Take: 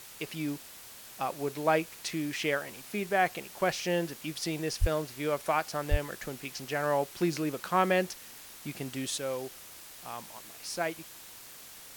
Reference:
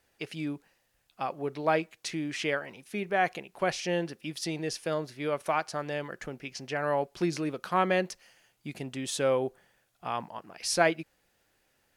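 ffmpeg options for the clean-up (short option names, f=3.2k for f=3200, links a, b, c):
-filter_complex "[0:a]adeclick=t=4,asplit=3[a][b][c];[a]afade=t=out:st=4.8:d=0.02[d];[b]highpass=f=140:w=0.5412,highpass=f=140:w=1.3066,afade=t=in:st=4.8:d=0.02,afade=t=out:st=4.92:d=0.02[e];[c]afade=t=in:st=4.92:d=0.02[f];[d][e][f]amix=inputs=3:normalize=0,asplit=3[g][h][i];[g]afade=t=out:st=5.9:d=0.02[j];[h]highpass=f=140:w=0.5412,highpass=f=140:w=1.3066,afade=t=in:st=5.9:d=0.02,afade=t=out:st=6.02:d=0.02[k];[i]afade=t=in:st=6.02:d=0.02[l];[j][k][l]amix=inputs=3:normalize=0,afwtdn=0.004,asetnsamples=n=441:p=0,asendcmd='9.18 volume volume 8.5dB',volume=0dB"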